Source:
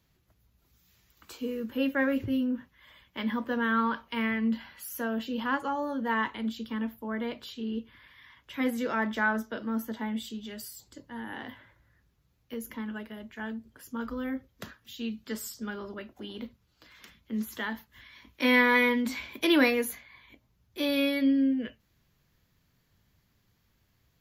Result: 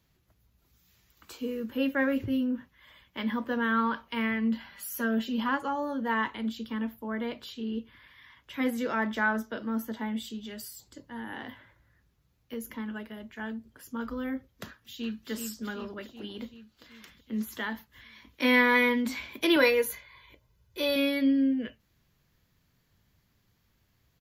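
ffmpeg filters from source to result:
-filter_complex "[0:a]asettb=1/sr,asplit=3[s0][s1][s2];[s0]atrim=end=4.724[s3];[s1]atrim=start=4.72:end=5.49,asetpts=PTS-STARTPTS,afade=t=in:d=0.004:c=qsin,afade=t=out:st=0.766:d=0.004:c=qsin,aecho=1:1:5:0.79,atrim=end_sample=33957[s4];[s2]atrim=start=5.486[s5];[s3][s4]acrossfade=d=0.004:c1=hsin:c2=qsin[s6];[s6][s5]acrossfade=d=0.004:c1=qsin:c2=hsin,asplit=2[s7][s8];[s8]afade=t=in:st=14.65:d=0.01,afade=t=out:st=15.3:d=0.01,aecho=0:1:380|760|1140|1520|1900|2280|2660|3040|3420|3800:0.530884|0.345075|0.224299|0.145794|0.0947662|0.061598|0.0400387|0.0260252|0.0169164|0.0109956[s9];[s7][s9]amix=inputs=2:normalize=0,asettb=1/sr,asplit=3[s10][s11][s12];[s10]atrim=end=19.564[s13];[s11]atrim=start=19.56:end=20.96,asetpts=PTS-STARTPTS,afade=t=in:d=0.004:c=qsin,afade=t=out:st=1.396:d=0.004:c=qsin,aecho=1:1:2:0.65,atrim=end_sample=61740[s14];[s12]atrim=start=20.956[s15];[s13][s14]acrossfade=d=0.004:c1=hsin:c2=qsin[s16];[s16][s15]acrossfade=d=0.004:c1=qsin:c2=hsin"

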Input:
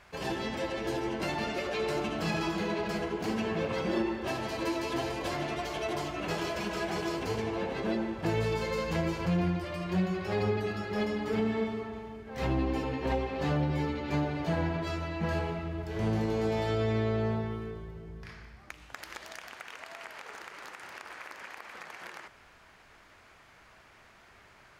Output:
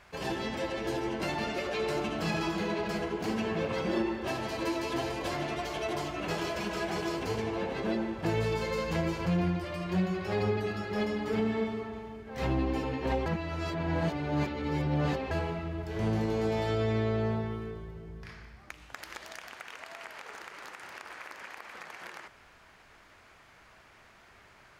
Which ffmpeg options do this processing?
-filter_complex "[0:a]asplit=3[s0][s1][s2];[s0]atrim=end=13.262[s3];[s1]atrim=start=13.258:end=15.312,asetpts=PTS-STARTPTS,areverse[s4];[s2]atrim=start=15.308[s5];[s3][s4]acrossfade=d=0.004:c1=hsin:c2=hsin[s6];[s6][s5]acrossfade=d=0.004:c1=hsin:c2=hsin"

